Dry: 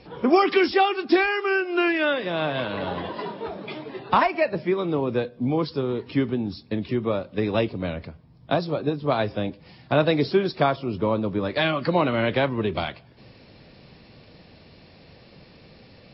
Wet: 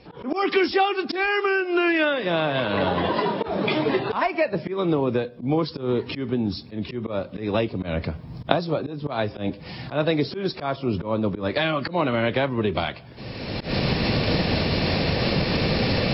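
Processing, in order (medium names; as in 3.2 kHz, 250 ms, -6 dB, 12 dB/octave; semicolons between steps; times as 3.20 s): recorder AGC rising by 27 dB/s; slow attack 119 ms; trim -1 dB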